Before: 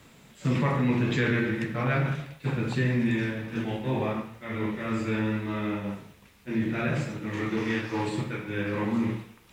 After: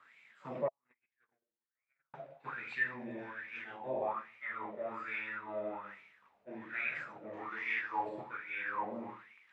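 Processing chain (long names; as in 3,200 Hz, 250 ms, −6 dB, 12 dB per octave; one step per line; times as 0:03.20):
0:00.68–0:02.14: noise gate −18 dBFS, range −55 dB
LFO wah 1.2 Hz 600–2,300 Hz, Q 7.5
level +5.5 dB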